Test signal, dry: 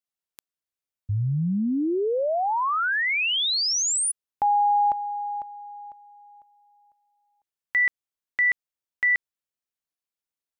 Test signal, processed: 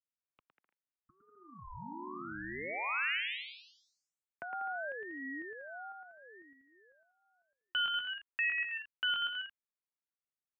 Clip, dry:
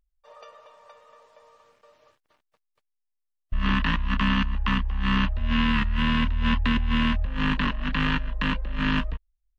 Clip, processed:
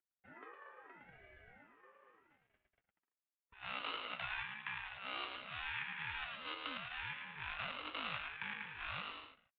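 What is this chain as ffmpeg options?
ffmpeg -i in.wav -filter_complex "[0:a]acrossover=split=1700[link_01][link_02];[link_01]acompressor=threshold=-36dB:ratio=12:attack=13:release=299:knee=6:detection=rms[link_03];[link_02]crystalizer=i=2:c=0[link_04];[link_03][link_04]amix=inputs=2:normalize=0,highpass=frequency=240:width_type=q:width=0.5412,highpass=frequency=240:width_type=q:width=1.307,lowpass=frequency=2100:width_type=q:width=0.5176,lowpass=frequency=2100:width_type=q:width=0.7071,lowpass=frequency=2100:width_type=q:width=1.932,afreqshift=270,aecho=1:1:110|192.5|254.4|300.8|335.6:0.631|0.398|0.251|0.158|0.1,aeval=exprs='val(0)*sin(2*PI*570*n/s+570*0.45/0.76*sin(2*PI*0.76*n/s))':channel_layout=same,volume=-5.5dB" out.wav

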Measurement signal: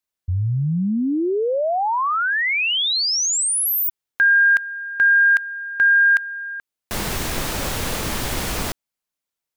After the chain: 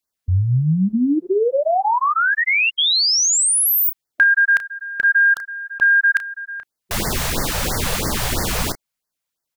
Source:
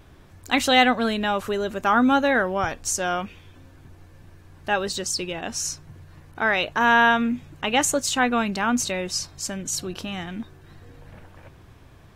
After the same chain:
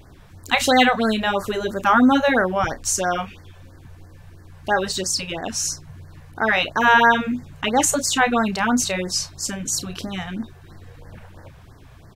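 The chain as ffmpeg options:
ffmpeg -i in.wav -filter_complex "[0:a]asplit=2[link_01][link_02];[link_02]adelay=32,volume=-11.5dB[link_03];[link_01][link_03]amix=inputs=2:normalize=0,afftfilt=real='re*(1-between(b*sr/1024,260*pow(3100/260,0.5+0.5*sin(2*PI*3*pts/sr))/1.41,260*pow(3100/260,0.5+0.5*sin(2*PI*3*pts/sr))*1.41))':imag='im*(1-between(b*sr/1024,260*pow(3100/260,0.5+0.5*sin(2*PI*3*pts/sr))/1.41,260*pow(3100/260,0.5+0.5*sin(2*PI*3*pts/sr))*1.41))':win_size=1024:overlap=0.75,volume=3.5dB" out.wav

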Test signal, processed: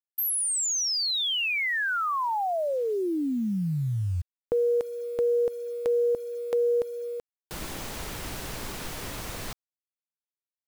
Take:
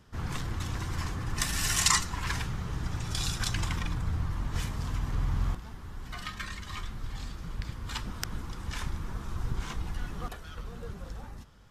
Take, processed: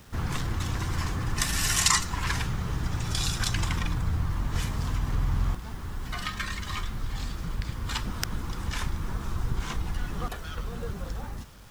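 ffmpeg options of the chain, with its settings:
ffmpeg -i in.wav -filter_complex "[0:a]asplit=2[link_01][link_02];[link_02]acompressor=threshold=-36dB:ratio=6,volume=2dB[link_03];[link_01][link_03]amix=inputs=2:normalize=0,acrusher=bits=8:mix=0:aa=0.000001" out.wav

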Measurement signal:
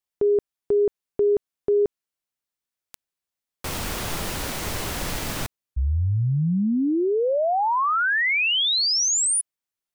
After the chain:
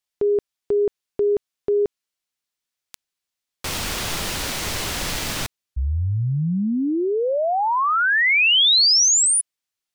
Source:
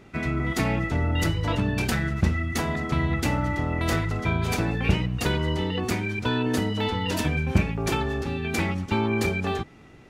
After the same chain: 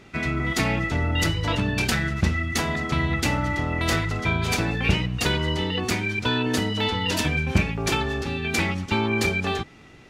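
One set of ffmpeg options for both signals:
ffmpeg -i in.wav -af "equalizer=frequency=4200:width=0.43:gain=6.5" out.wav

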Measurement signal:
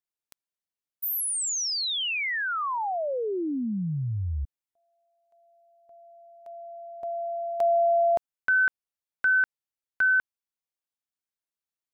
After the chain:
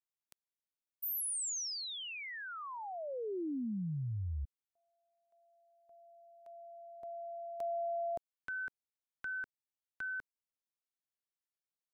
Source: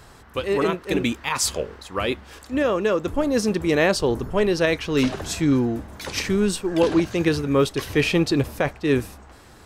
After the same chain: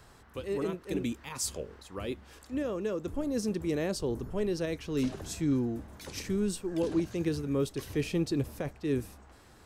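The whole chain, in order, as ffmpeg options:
ffmpeg -i in.wav -filter_complex "[0:a]acrossover=split=480|5500[link_01][link_02][link_03];[link_02]acompressor=threshold=-48dB:ratio=1.5:attack=2.2:release=168:knee=2.83:detection=peak[link_04];[link_01][link_04][link_03]amix=inputs=3:normalize=0,volume=-8.5dB" out.wav

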